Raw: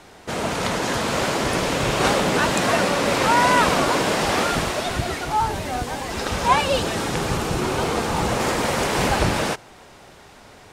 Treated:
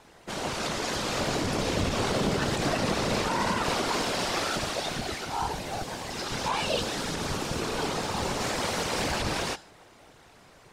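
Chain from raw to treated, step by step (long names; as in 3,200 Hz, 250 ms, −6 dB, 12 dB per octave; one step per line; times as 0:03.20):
0:01.19–0:03.64: low-shelf EQ 400 Hz +9 dB
hum removal 286.1 Hz, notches 38
dynamic equaliser 4,800 Hz, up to +6 dB, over −41 dBFS, Q 1
brickwall limiter −10.5 dBFS, peak gain reduction 9.5 dB
random phases in short frames
level −8 dB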